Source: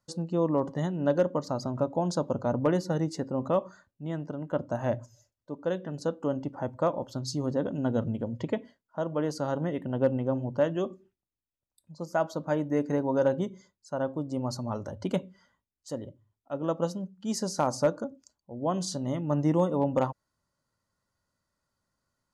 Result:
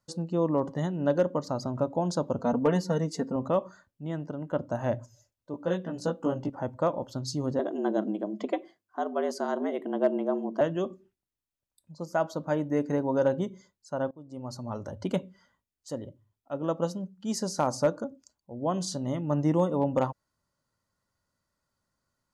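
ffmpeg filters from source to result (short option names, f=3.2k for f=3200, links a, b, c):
-filter_complex "[0:a]asettb=1/sr,asplit=3[a][b][c];[a]atrim=end=2.394[d];[b]atrim=start=2.39:end=3.36,asetpts=PTS-STARTPTS,afade=t=in:d=0.004:c=qsin,afade=t=out:st=0.966:d=0.004:c=qsin,aecho=1:1:4.4:0.76,atrim=end_sample=42777[e];[c]atrim=start=3.356[f];[d][e]acrossfade=d=0.004:c1=hsin:c2=qsin[g];[g][f]acrossfade=d=0.004:c1=qsin:c2=hsin,asettb=1/sr,asplit=3[h][i][j];[h]atrim=end=5.524[k];[i]atrim=start=5.52:end=6.5,asetpts=PTS-STARTPTS,afade=t=in:d=0.004:c=qsin,afade=t=out:st=0.976:d=0.004:c=qsin,asplit=2[l][m];[m]adelay=17,volume=-2dB[n];[l][n]amix=inputs=2:normalize=0,atrim=end_sample=43218[o];[j]atrim=start=6.496[p];[k][o]acrossfade=d=0.004:c1=hsin:c2=qsin[q];[q][p]acrossfade=d=0.004:c1=qsin:c2=hsin,asettb=1/sr,asplit=3[r][s][t];[r]atrim=end=7.594[u];[s]atrim=start=7.59:end=10.61,asetpts=PTS-STARTPTS,afade=t=in:d=0.004:c=qsin,afade=t=out:st=3.016:d=0.004:c=qsin,afreqshift=97[v];[t]atrim=start=10.606[w];[u][v]acrossfade=d=0.004:c1=hsin:c2=qsin[x];[x][w]acrossfade=d=0.004:c1=qsin:c2=hsin,asplit=2[y][z];[y]atrim=end=14.11,asetpts=PTS-STARTPTS,afade=t=out:st=14.106:d=0.004:c=hsin:silence=0.0841395[aa];[z]atrim=start=14.11,asetpts=PTS-STARTPTS,afade=t=in:d=0.83:silence=0.0841395[ab];[aa][ab]concat=n=2:v=0:a=1"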